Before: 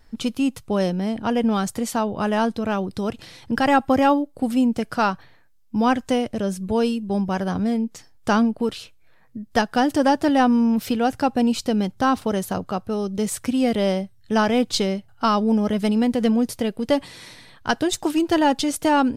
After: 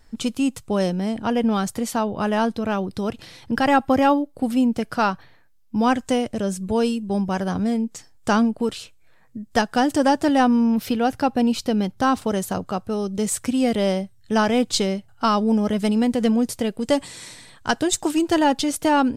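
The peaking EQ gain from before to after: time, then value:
peaking EQ 7.7 kHz 0.53 oct
+6.5 dB
from 1.26 s -0.5 dB
from 5.81 s +6.5 dB
from 10.47 s -2.5 dB
from 12.00 s +5.5 dB
from 16.81 s +13.5 dB
from 17.70 s +7.5 dB
from 18.44 s +1 dB

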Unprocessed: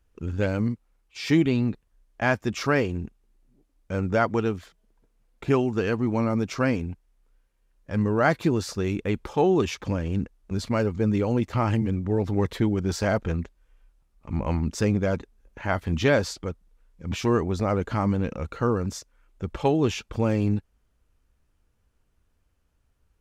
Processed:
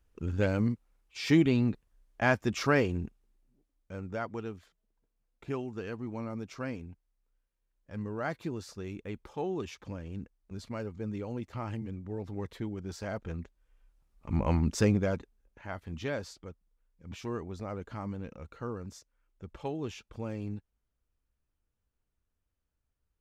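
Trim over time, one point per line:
3.03 s -3 dB
4.00 s -13.5 dB
13.06 s -13.5 dB
14.31 s -1.5 dB
14.84 s -1.5 dB
15.63 s -14 dB

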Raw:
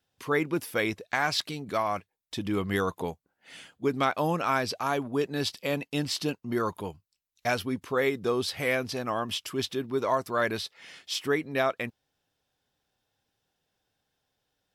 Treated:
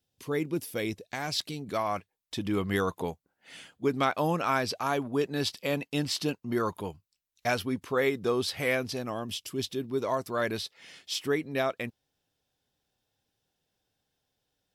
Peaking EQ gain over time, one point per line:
peaking EQ 1.3 kHz 2 oct
1.26 s -11.5 dB
1.95 s -1 dB
8.73 s -1 dB
9.38 s -13 dB
10.21 s -4.5 dB

